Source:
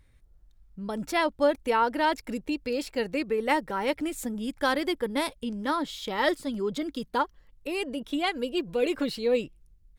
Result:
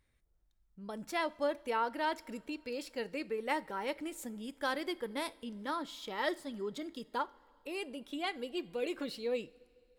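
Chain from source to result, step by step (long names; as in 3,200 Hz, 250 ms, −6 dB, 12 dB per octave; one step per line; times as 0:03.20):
low-shelf EQ 150 Hz −9.5 dB
coupled-rooms reverb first 0.38 s, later 2.6 s, from −16 dB, DRR 15.5 dB
level −8.5 dB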